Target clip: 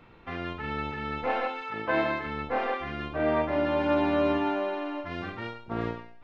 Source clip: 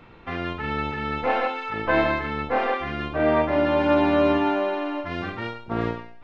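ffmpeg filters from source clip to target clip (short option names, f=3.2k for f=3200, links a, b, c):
-filter_complex "[0:a]asettb=1/sr,asplit=3[a][b][c];[a]atrim=end=1.614[d];[b]atrim=start=1.61:end=2.26,asetpts=PTS-STARTPTS,afade=t=in:d=0.004:c=qsin,afade=t=out:st=0.646:d=0.004:c=qsin,highpass=120[e];[c]atrim=start=2.256[f];[d][e]acrossfade=d=0.004:c1=hsin:c2=qsin[g];[g][f]acrossfade=d=0.004:c1=qsin:c2=hsin,volume=-5.5dB"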